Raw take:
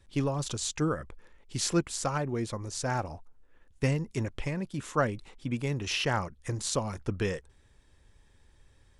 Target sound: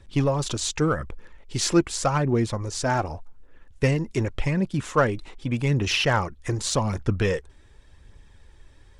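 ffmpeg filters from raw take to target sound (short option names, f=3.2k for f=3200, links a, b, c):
-filter_complex "[0:a]highshelf=f=9.3k:g=-10,asplit=2[a][b];[b]asoftclip=type=hard:threshold=-28.5dB,volume=-11.5dB[c];[a][c]amix=inputs=2:normalize=0,aphaser=in_gain=1:out_gain=1:delay=3.4:decay=0.34:speed=0.86:type=triangular,volume=5.5dB"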